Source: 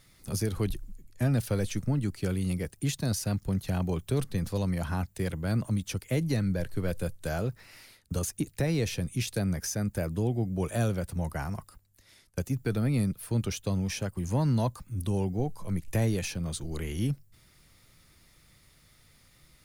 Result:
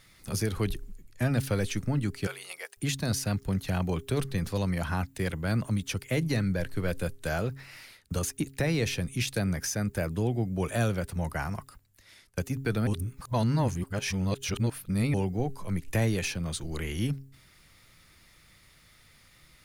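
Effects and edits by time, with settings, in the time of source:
2.27–2.77 s: high-pass 630 Hz 24 dB/octave
12.87–15.14 s: reverse
whole clip: peaking EQ 2 kHz +5.5 dB 2.3 oct; de-hum 135.1 Hz, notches 3

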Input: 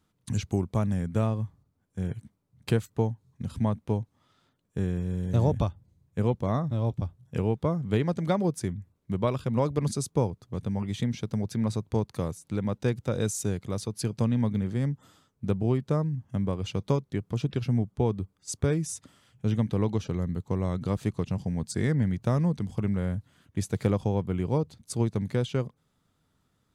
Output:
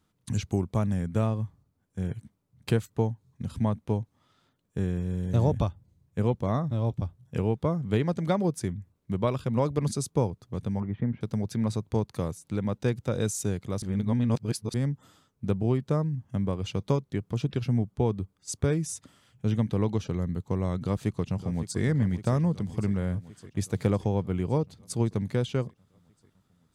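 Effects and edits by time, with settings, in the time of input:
10.80–11.21 s: low-pass 1.7 kHz 24 dB/octave
13.82–14.74 s: reverse
20.78–21.81 s: echo throw 560 ms, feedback 70%, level -12.5 dB

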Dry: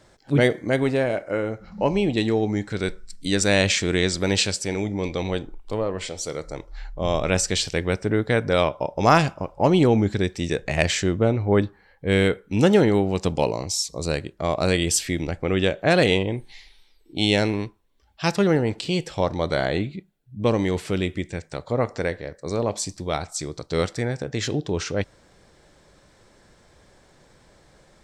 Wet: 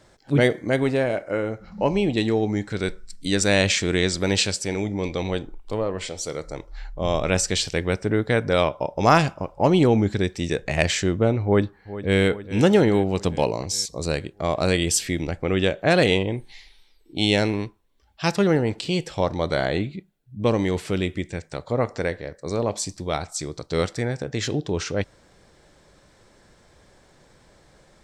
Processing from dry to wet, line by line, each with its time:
11.44–12.21 s: echo throw 410 ms, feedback 65%, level -14.5 dB

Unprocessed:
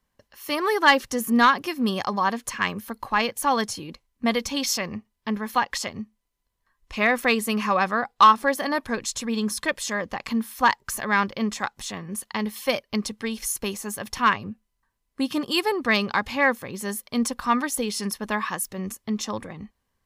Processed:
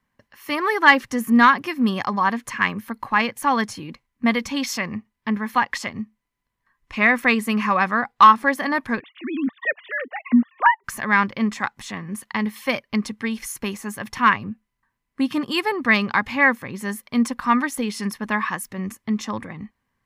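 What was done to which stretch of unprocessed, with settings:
9.00–10.84 s: formants replaced by sine waves
whole clip: graphic EQ 125/250/1000/2000 Hz +8/+8/+6/+10 dB; trim -5 dB

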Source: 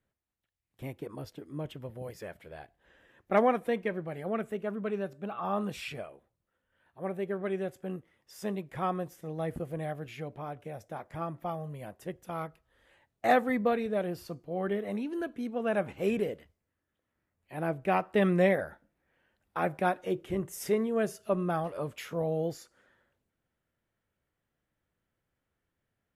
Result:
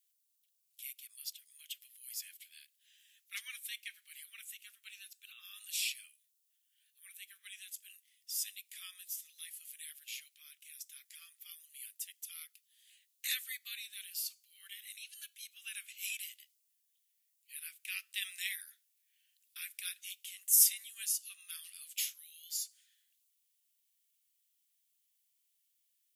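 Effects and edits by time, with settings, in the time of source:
20.41–21.05 s: treble shelf 7.6 kHz +4.5 dB
whole clip: inverse Chebyshev high-pass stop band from 780 Hz, stop band 60 dB; differentiator; trim +13.5 dB

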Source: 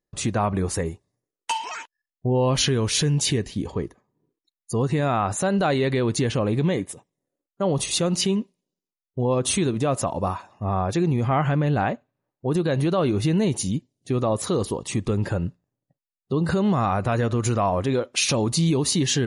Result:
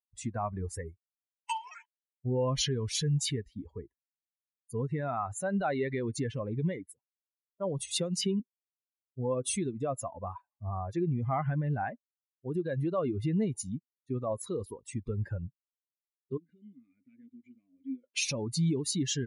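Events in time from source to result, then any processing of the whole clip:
7.96–8.40 s: three bands compressed up and down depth 100%
16.37–18.04 s: vowel filter i
whole clip: expander on every frequency bin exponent 2; de-esser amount 30%; trim -5 dB

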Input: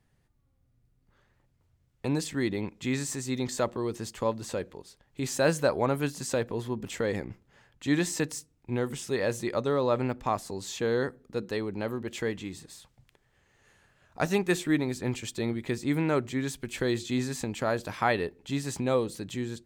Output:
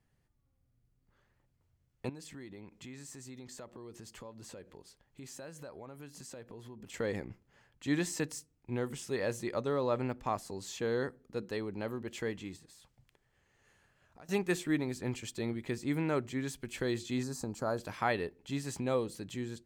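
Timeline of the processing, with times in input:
2.09–6.94 s: compression 4:1, threshold -41 dBFS
12.56–14.29 s: compression 4:1, threshold -49 dBFS
17.23–17.78 s: high-order bell 2.5 kHz -14 dB 1.2 oct
whole clip: band-stop 3.7 kHz, Q 23; trim -5.5 dB

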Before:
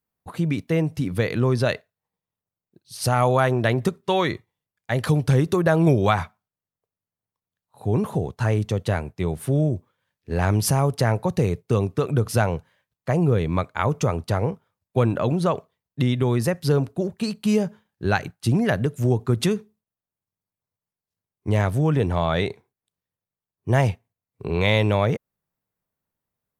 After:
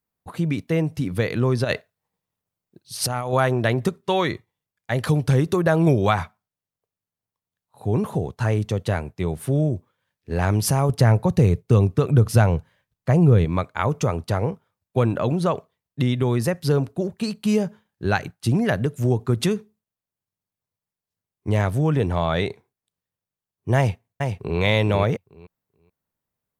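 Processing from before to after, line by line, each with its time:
1.64–3.33 s: compressor with a negative ratio -23 dBFS, ratio -0.5
10.89–13.45 s: bass shelf 170 Hz +9.5 dB
23.77–24.60 s: echo throw 430 ms, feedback 15%, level -5 dB

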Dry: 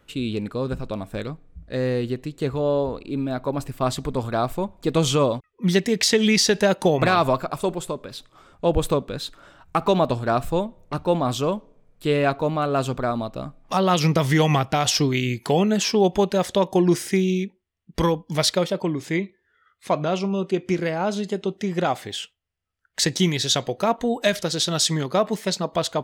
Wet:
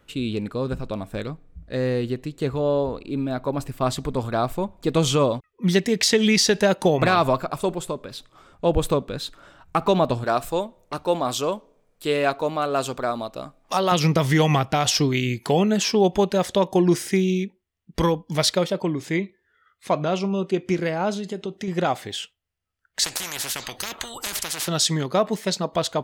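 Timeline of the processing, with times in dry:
10.24–13.92 s: tone controls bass -10 dB, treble +5 dB
21.13–21.68 s: compression 3:1, threshold -26 dBFS
23.04–24.68 s: spectrum-flattening compressor 10:1

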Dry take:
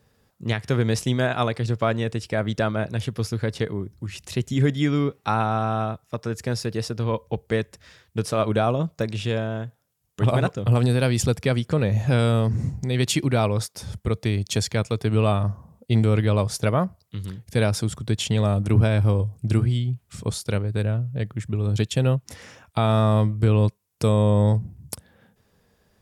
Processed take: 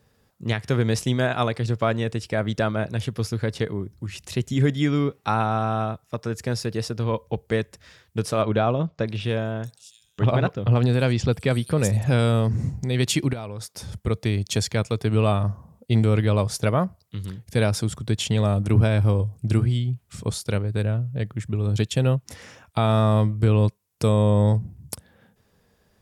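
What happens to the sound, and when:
8.42–12.06 s: bands offset in time lows, highs 650 ms, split 5.5 kHz
13.33–13.92 s: compression 5:1, threshold -30 dBFS

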